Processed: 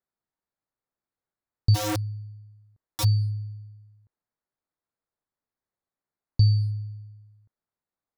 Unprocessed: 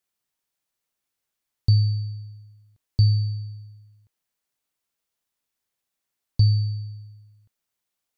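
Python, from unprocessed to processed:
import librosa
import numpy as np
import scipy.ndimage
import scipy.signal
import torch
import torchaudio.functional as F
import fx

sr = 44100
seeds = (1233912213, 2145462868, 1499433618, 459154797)

y = fx.wiener(x, sr, points=15)
y = fx.overflow_wrap(y, sr, gain_db=22.0, at=(1.74, 3.03), fade=0.02)
y = y * 10.0 ** (-1.0 / 20.0)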